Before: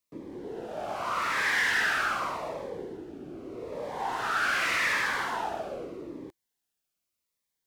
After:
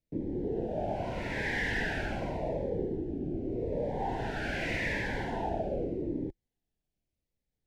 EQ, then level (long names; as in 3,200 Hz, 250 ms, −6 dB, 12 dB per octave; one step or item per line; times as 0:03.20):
Butterworth band-reject 1,200 Hz, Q 1.4
spectral tilt −4.5 dB per octave
−1.0 dB